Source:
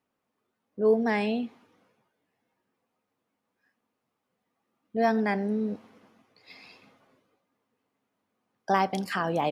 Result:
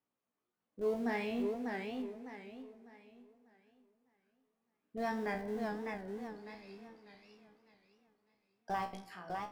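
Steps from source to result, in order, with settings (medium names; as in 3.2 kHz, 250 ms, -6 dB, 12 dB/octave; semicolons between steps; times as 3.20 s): fade out at the end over 1.13 s; in parallel at -9 dB: Schmitt trigger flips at -27.5 dBFS; on the sum: feedback comb 60 Hz, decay 0.28 s, harmonics all, mix 90%; FDN reverb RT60 3 s, high-frequency decay 0.4×, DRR 14.5 dB; modulated delay 600 ms, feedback 33%, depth 127 cents, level -4 dB; trim -4 dB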